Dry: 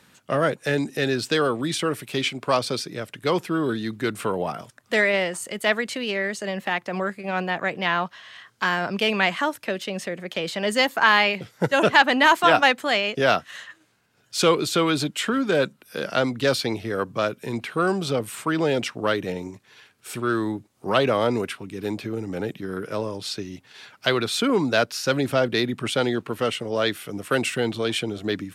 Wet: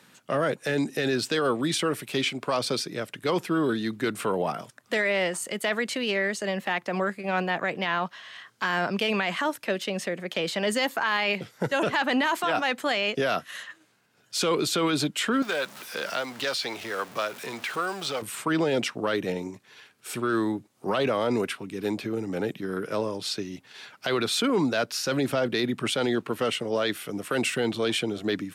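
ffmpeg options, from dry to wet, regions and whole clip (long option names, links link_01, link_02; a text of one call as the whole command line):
ffmpeg -i in.wav -filter_complex "[0:a]asettb=1/sr,asplit=3[link_01][link_02][link_03];[link_01]atrim=end=13.234[link_04];[link_02]atrim=start=13.23:end=13.63,asetpts=PTS-STARTPTS,afade=type=in:duration=0.004:curve=qsin,afade=type=out:start_time=0.396:duration=0.004:curve=qsin,equalizer=frequency=11000:width=3.7:gain=10.5,bandreject=frequency=840:width=8.3[link_05];[link_03]atrim=start=13.626[link_06];[link_04][link_05]acrossfade=duration=0.004:curve1=hsin:curve2=qsin[link_07];[link_07][link_06]acrossfade=duration=0.004:curve1=qsin:curve2=hsin,asettb=1/sr,asplit=3[link_08][link_09][link_10];[link_08]atrim=end=15.424[link_11];[link_09]atrim=start=15.42:end=18.22,asetpts=PTS-STARTPTS,afade=type=in:duration=0.004:curve=qsin,afade=type=out:start_time=2.796:duration=0.004:curve=qsin,aeval=exprs='val(0)+0.5*0.0211*sgn(val(0))':channel_layout=same,lowshelf=frequency=320:gain=-10,acrossover=split=600|7500[link_12][link_13][link_14];[link_12]acompressor=threshold=-37dB:ratio=4[link_15];[link_13]acompressor=threshold=-26dB:ratio=4[link_16];[link_14]acompressor=threshold=-48dB:ratio=4[link_17];[link_15][link_16][link_17]amix=inputs=3:normalize=0[link_18];[link_10]atrim=start=18.216[link_19];[link_11][link_18]acrossfade=duration=0.004:curve1=hsin:curve2=qsin[link_20];[link_20][link_19]acrossfade=duration=0.004:curve1=qsin:curve2=hsin,highpass=130,alimiter=limit=-16.5dB:level=0:latency=1:release=18" out.wav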